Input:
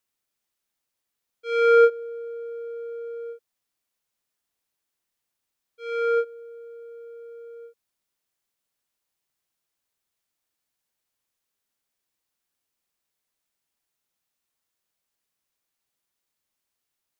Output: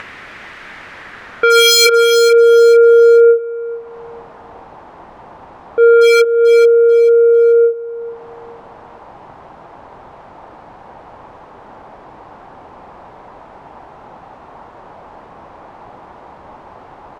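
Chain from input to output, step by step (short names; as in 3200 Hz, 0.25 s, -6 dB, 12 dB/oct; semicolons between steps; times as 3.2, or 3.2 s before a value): upward compressor, threshold -25 dBFS; low-pass sweep 1900 Hz -> 870 Hz, 0.77–4.1; wavefolder -18.5 dBFS; added harmonics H 3 -19 dB, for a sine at -18.5 dBFS; on a send: feedback echo 0.438 s, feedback 27%, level -17 dB; on the sum: maximiser +25.5 dB; gain -1 dB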